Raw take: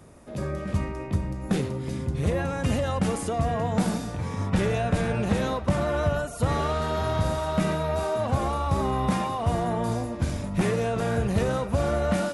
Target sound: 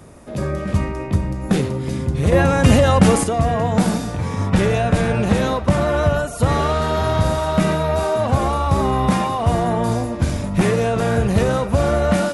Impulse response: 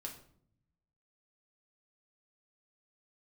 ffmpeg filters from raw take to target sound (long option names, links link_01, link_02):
-filter_complex "[0:a]asettb=1/sr,asplit=3[link_01][link_02][link_03];[link_01]atrim=end=2.324[link_04];[link_02]atrim=start=2.32:end=3.24,asetpts=PTS-STARTPTS,afade=type=in:duration=0.004:curve=qsin,afade=type=out:start_time=0.916:duration=0.004:curve=qsin,acontrast=37[link_05];[link_03]atrim=start=3.236[link_06];[link_04][link_05]acrossfade=duration=0.004:curve1=hsin:curve2=qsin[link_07];[link_07][link_06]acrossfade=duration=0.004:curve1=qsin:curve2=hsin,volume=7.5dB"